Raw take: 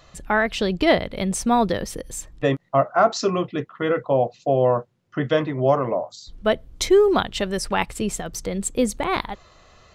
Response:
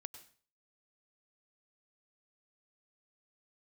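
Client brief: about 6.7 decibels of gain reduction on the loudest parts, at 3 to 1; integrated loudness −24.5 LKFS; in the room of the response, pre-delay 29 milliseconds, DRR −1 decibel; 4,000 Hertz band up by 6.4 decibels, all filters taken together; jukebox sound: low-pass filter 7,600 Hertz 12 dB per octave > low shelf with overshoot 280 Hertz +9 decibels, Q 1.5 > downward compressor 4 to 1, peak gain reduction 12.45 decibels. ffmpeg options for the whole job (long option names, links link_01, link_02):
-filter_complex "[0:a]equalizer=frequency=4000:width_type=o:gain=8.5,acompressor=threshold=-20dB:ratio=3,asplit=2[link_01][link_02];[1:a]atrim=start_sample=2205,adelay=29[link_03];[link_02][link_03]afir=irnorm=-1:irlink=0,volume=6dB[link_04];[link_01][link_04]amix=inputs=2:normalize=0,lowpass=7600,lowshelf=frequency=280:width_type=q:width=1.5:gain=9,acompressor=threshold=-22dB:ratio=4,volume=1.5dB"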